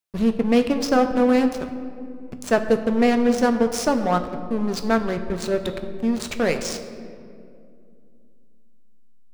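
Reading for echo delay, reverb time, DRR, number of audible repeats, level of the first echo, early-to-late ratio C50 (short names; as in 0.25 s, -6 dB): none, 2.4 s, 7.0 dB, none, none, 10.0 dB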